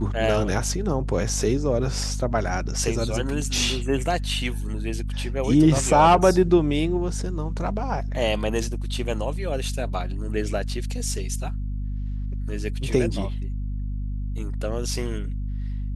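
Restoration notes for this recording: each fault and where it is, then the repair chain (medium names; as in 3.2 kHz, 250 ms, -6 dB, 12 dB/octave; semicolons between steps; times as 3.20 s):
hum 50 Hz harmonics 5 -28 dBFS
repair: de-hum 50 Hz, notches 5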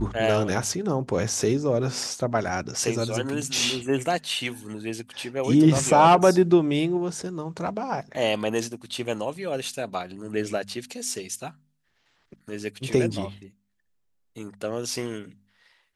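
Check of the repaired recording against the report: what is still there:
nothing left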